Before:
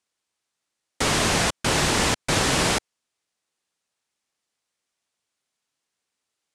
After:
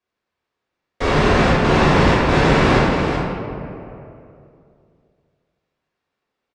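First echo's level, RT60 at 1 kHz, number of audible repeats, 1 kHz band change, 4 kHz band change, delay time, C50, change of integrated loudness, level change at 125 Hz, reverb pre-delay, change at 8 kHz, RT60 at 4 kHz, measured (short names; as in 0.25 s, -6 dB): -7.5 dB, 2.5 s, 1, +8.5 dB, -1.5 dB, 0.379 s, -2.5 dB, +5.5 dB, +11.0 dB, 3 ms, -12.0 dB, 1.4 s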